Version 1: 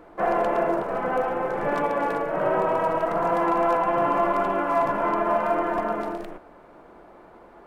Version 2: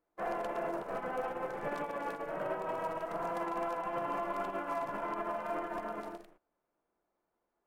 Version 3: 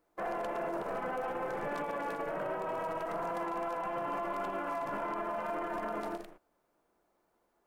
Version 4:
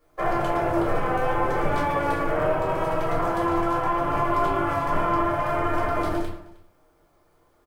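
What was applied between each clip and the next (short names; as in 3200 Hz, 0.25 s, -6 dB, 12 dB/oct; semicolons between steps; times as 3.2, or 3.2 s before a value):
high shelf 3200 Hz +9 dB; limiter -19 dBFS, peak gain reduction 8 dB; upward expander 2.5:1, over -44 dBFS; gain -7 dB
limiter -36.5 dBFS, peak gain reduction 10 dB; gain +8 dB
octaver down 2 oct, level -4 dB; echo 0.311 s -22 dB; reverb RT60 0.35 s, pre-delay 4 ms, DRR -4.5 dB; gain +4.5 dB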